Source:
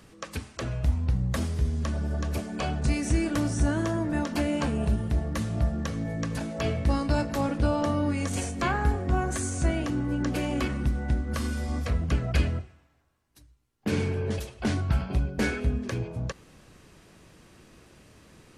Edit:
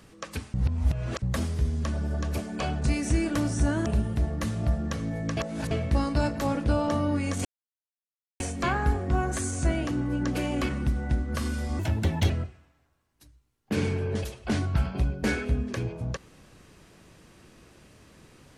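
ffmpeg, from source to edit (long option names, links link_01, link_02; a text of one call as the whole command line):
ffmpeg -i in.wav -filter_complex "[0:a]asplit=9[link_01][link_02][link_03][link_04][link_05][link_06][link_07][link_08][link_09];[link_01]atrim=end=0.542[link_10];[link_02]atrim=start=0.538:end=1.222,asetpts=PTS-STARTPTS,areverse[link_11];[link_03]atrim=start=1.218:end=3.862[link_12];[link_04]atrim=start=4.798:end=6.312[link_13];[link_05]atrim=start=6.308:end=6.652,asetpts=PTS-STARTPTS,areverse[link_14];[link_06]atrim=start=6.648:end=8.39,asetpts=PTS-STARTPTS,afade=type=out:start_time=1.738:duration=0.004:curve=hsin,apad=pad_dur=0.95[link_15];[link_07]atrim=start=8.39:end=11.784,asetpts=PTS-STARTPTS,afade=type=in:duration=0.004:curve=hsin[link_16];[link_08]atrim=start=11.78:end=12.45,asetpts=PTS-STARTPTS,asetrate=58212,aresample=44100,atrim=end_sample=22384,asetpts=PTS-STARTPTS[link_17];[link_09]atrim=start=12.446[link_18];[link_10][link_11]acrossfade=duration=0.004:curve1=hsin:curve2=hsin[link_19];[link_19][link_12]acrossfade=duration=0.004:curve1=hsin:curve2=hsin[link_20];[link_20][link_13]acrossfade=duration=0.004:curve1=hsin:curve2=hsin[link_21];[link_21][link_14]acrossfade=duration=0.004:curve1=hsin:curve2=hsin[link_22];[link_15][link_16]concat=n=2:v=0:a=1[link_23];[link_22][link_23]acrossfade=duration=0.004:curve1=hsin:curve2=hsin[link_24];[link_24][link_17]acrossfade=duration=0.004:curve1=hsin:curve2=hsin[link_25];[link_25][link_18]acrossfade=duration=0.004:curve1=hsin:curve2=hsin" out.wav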